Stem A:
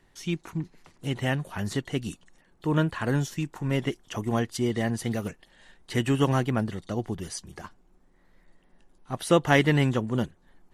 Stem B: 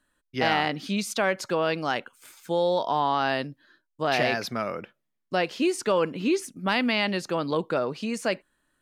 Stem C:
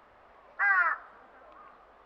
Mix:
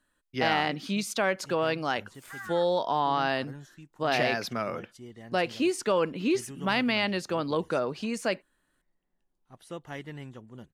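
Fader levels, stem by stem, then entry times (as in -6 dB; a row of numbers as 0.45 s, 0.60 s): -19.5 dB, -2.0 dB, -17.0 dB; 0.40 s, 0.00 s, 1.70 s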